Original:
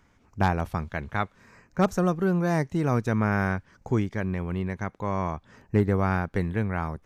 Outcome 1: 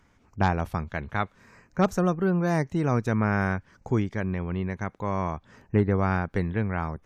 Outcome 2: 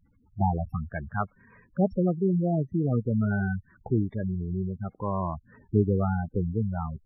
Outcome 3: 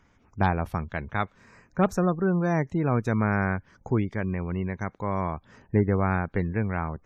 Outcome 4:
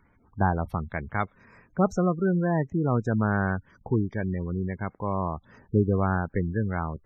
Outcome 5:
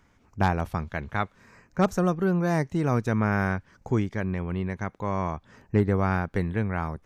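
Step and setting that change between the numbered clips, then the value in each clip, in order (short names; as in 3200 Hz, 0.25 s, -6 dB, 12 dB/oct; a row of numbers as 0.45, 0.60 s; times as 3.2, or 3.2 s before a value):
spectral gate, under each frame's peak: -50, -10, -35, -20, -60 dB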